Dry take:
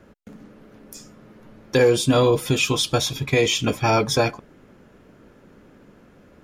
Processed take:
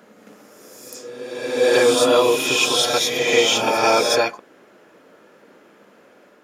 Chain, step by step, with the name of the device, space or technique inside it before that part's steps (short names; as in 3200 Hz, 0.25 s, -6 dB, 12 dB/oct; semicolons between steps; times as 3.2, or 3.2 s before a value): ghost voice (reverse; reverb RT60 1.6 s, pre-delay 32 ms, DRR 0 dB; reverse; HPF 420 Hz 12 dB/oct); gain +2 dB